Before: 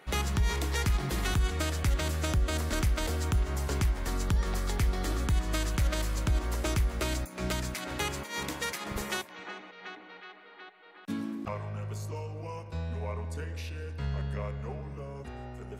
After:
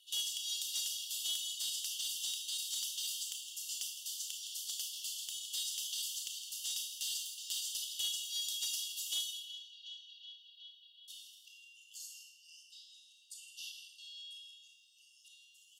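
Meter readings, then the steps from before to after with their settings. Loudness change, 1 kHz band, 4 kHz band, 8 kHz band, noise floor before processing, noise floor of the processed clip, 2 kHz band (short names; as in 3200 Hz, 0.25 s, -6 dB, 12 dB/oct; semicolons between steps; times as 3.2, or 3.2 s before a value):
-5.5 dB, under -35 dB, +3.0 dB, +2.5 dB, -51 dBFS, -64 dBFS, -16.0 dB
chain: brick-wall FIR high-pass 2700 Hz; notch 4000 Hz, Q 14; comb 3 ms, depth 43%; Schroeder reverb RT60 0.6 s, combs from 25 ms, DRR 1.5 dB; frequency shift +15 Hz; outdoor echo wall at 28 m, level -9 dB; soft clip -26 dBFS, distortion -22 dB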